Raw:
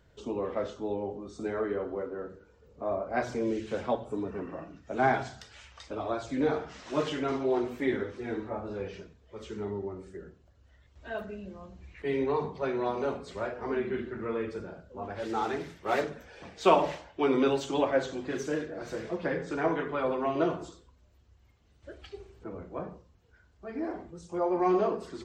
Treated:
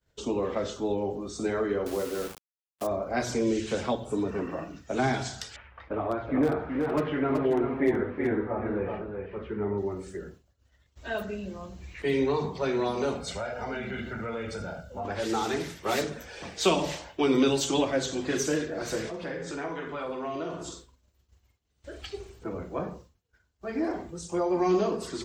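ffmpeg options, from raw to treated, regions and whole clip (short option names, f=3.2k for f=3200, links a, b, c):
-filter_complex "[0:a]asettb=1/sr,asplit=3[a][b][c];[a]atrim=end=1.864[d];[b]atrim=start=1.86:end=2.87,asetpts=PTS-STARTPTS,afade=t=in:d=0.004:c=qsin,afade=t=out:st=1.006:d=0.004:c=qsin,aemphasis=mode=reproduction:type=cd,aeval=exprs='val(0)*gte(abs(val(0)),0.00596)':c=same[e];[c]atrim=start=2.866[f];[d][e]acrossfade=d=0.004:c1=hsin:c2=qsin[g];[g][f]acrossfade=d=0.004:c1=qsin:c2=hsin,asettb=1/sr,asplit=3[h][i][j];[h]atrim=end=5.564[k];[i]atrim=start=5.56:end=9.78,asetpts=PTS-STARTPTS,afade=t=in:d=0.004:c=qsin,afade=t=out:st=4.216:d=0.004:c=qsin,lowpass=f=2k:w=0.5412,lowpass=f=2k:w=1.3066,asoftclip=type=hard:threshold=-20dB,aecho=1:1:376:0.501,atrim=end_sample=186102[l];[j]atrim=start=9.776[m];[k][l]acrossfade=d=0.004:c1=hsin:c2=qsin[n];[n][m]acrossfade=d=0.004:c1=qsin:c2=hsin,asettb=1/sr,asplit=3[o][p][q];[o]atrim=end=13.204[r];[p]atrim=start=13.2:end=15.05,asetpts=PTS-STARTPTS,afade=t=in:d=0.004:c=qsin,afade=t=out:st=1.846:d=0.004:c=qsin,aecho=1:1:1.4:0.65,atrim=end_sample=81585,acompressor=threshold=-37dB:ratio=3:attack=3.2:release=140:knee=1:detection=peak[s];[q]atrim=start=15.046[t];[r][s]acrossfade=d=0.004:c1=hsin:c2=qsin[u];[u][t]acrossfade=d=0.004:c1=qsin:c2=hsin,asettb=1/sr,asplit=3[v][w][x];[v]atrim=end=19.094[y];[w]atrim=start=19.09:end=22.01,asetpts=PTS-STARTPTS,afade=t=in:d=0.004:c=qsin,afade=t=out:st=2.916:d=0.004:c=qsin,acompressor=threshold=-43dB:ratio=2.5:attack=3.2:release=140:knee=1:detection=peak,asplit=2[z][aa];[aa]adelay=47,volume=-8dB[ab];[z][ab]amix=inputs=2:normalize=0,atrim=end_sample=128772[ac];[x]atrim=start=22.006[ad];[y][ac]acrossfade=d=0.004:c1=hsin:c2=qsin[ae];[ae][ad]acrossfade=d=0.004:c1=qsin:c2=hsin,agate=range=-33dB:threshold=-51dB:ratio=3:detection=peak,highshelf=f=4.2k:g=11.5,acrossover=split=330|3000[af][ag][ah];[ag]acompressor=threshold=-34dB:ratio=4[ai];[af][ai][ah]amix=inputs=3:normalize=0,volume=5.5dB"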